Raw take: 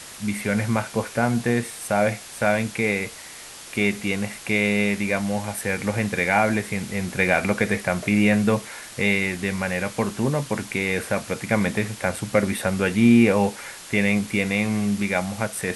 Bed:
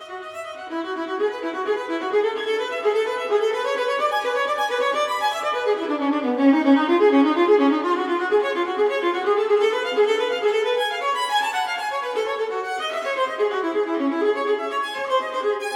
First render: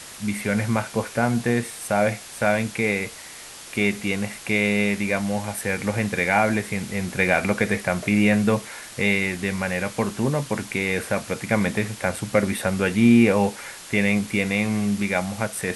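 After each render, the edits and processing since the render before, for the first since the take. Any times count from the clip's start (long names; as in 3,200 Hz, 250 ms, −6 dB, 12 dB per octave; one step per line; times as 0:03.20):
no processing that can be heard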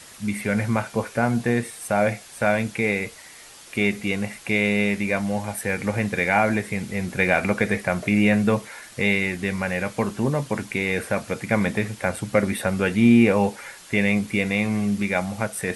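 broadband denoise 6 dB, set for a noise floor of −40 dBFS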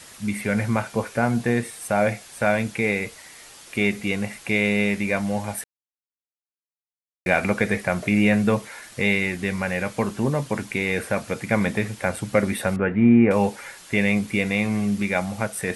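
0:05.64–0:07.26: silence
0:12.76–0:13.31: low-pass filter 2,000 Hz 24 dB per octave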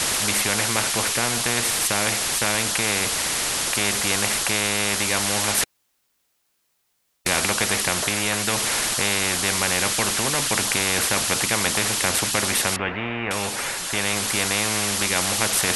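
speech leveller 0.5 s
every bin compressed towards the loudest bin 4 to 1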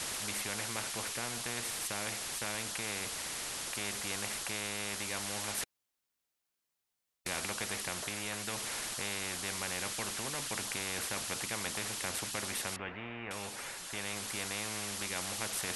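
level −15.5 dB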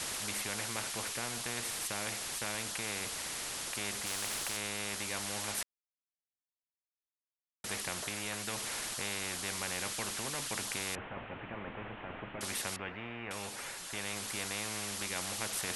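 0:04.06–0:04.57: every bin compressed towards the loudest bin 4 to 1
0:05.63–0:07.64: silence
0:10.95–0:12.41: linear delta modulator 16 kbit/s, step −46 dBFS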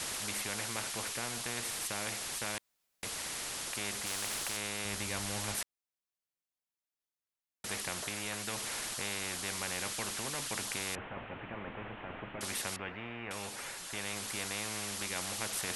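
0:02.58–0:03.03: fill with room tone
0:04.85–0:05.56: low-shelf EQ 150 Hz +10.5 dB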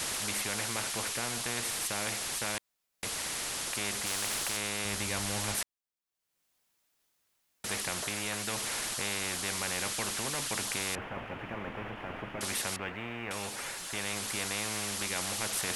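upward compression, threshold −57 dBFS
leveller curve on the samples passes 1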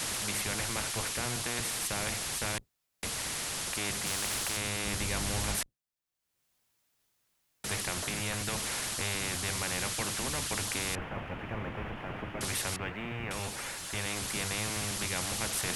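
sub-octave generator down 1 octave, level +2 dB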